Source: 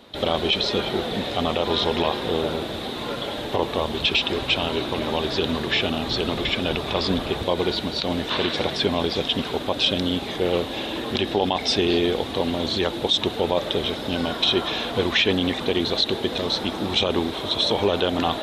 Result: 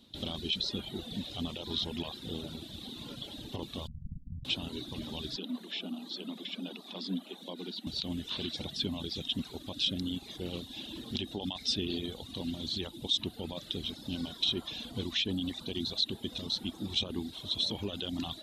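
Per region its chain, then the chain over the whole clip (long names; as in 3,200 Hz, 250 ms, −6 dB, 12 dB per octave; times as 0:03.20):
0:03.87–0:04.45: lower of the sound and its delayed copy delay 1.3 ms + inverse Chebyshev low-pass filter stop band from 1,200 Hz, stop band 80 dB
0:05.36–0:07.87: dynamic equaliser 6,800 Hz, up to −5 dB, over −39 dBFS, Q 0.83 + Chebyshev high-pass with heavy ripple 180 Hz, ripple 3 dB
whole clip: reverb reduction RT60 1 s; flat-topped bell 960 Hz −13.5 dB 2.9 octaves; level −7.5 dB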